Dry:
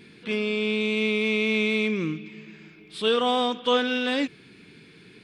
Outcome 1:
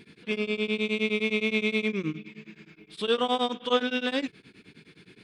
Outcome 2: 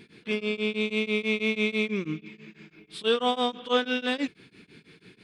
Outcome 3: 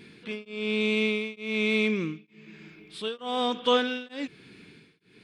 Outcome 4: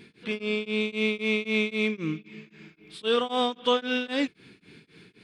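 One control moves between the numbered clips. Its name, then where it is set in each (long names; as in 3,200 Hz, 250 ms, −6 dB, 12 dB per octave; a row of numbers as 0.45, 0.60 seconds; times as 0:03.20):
tremolo along a rectified sine, nulls at: 9.6, 6.1, 1.1, 3.8 Hertz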